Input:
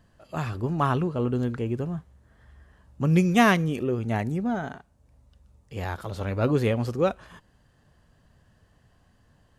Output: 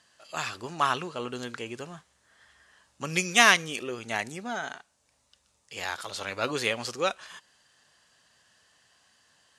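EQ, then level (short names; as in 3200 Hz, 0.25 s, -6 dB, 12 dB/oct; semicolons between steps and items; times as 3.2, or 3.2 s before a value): weighting filter ITU-R 468; 0.0 dB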